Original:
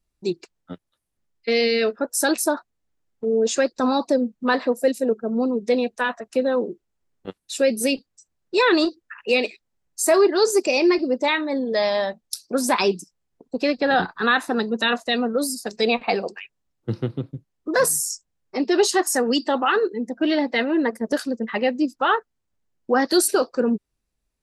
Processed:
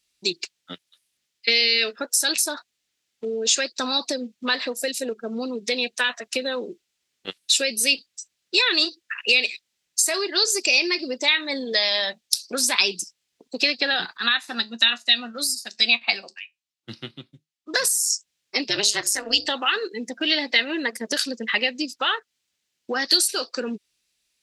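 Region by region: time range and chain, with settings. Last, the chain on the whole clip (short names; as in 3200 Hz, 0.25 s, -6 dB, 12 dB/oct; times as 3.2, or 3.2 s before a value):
14.17–17.74 bell 450 Hz -14.5 dB 0.29 oct + resonator 77 Hz, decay 0.17 s, mix 50% + upward expander, over -42 dBFS
18.67–19.46 notches 60/120/180/240/300/360/420/480/540 Hz + AM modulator 210 Hz, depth 85%
whole clip: high shelf 2000 Hz +11 dB; compressor, threshold -21 dBFS; weighting filter D; gain -3 dB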